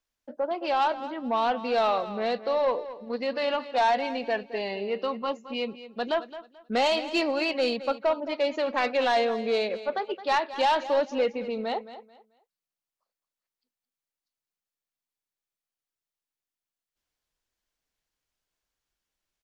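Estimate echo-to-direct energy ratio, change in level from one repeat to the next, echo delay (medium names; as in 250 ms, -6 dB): -13.5 dB, -12.0 dB, 218 ms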